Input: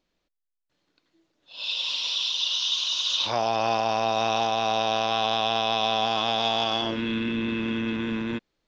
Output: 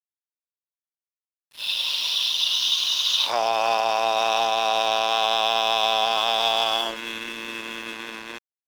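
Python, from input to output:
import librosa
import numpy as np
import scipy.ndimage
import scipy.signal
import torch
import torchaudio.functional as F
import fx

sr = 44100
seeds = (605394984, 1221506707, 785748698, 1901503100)

y = scipy.signal.sosfilt(scipy.signal.butter(2, 560.0, 'highpass', fs=sr, output='sos'), x)
y = np.sign(y) * np.maximum(np.abs(y) - 10.0 ** (-41.0 / 20.0), 0.0)
y = y * librosa.db_to_amplitude(5.0)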